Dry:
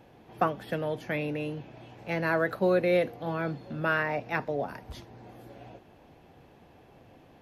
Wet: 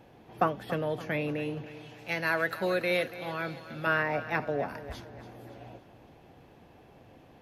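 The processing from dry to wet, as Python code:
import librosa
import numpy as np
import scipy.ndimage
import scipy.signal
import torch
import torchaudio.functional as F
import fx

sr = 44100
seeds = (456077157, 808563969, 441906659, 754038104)

y = fx.tilt_shelf(x, sr, db=-7.0, hz=1300.0, at=(1.66, 3.87))
y = fx.echo_feedback(y, sr, ms=283, feedback_pct=48, wet_db=-14.5)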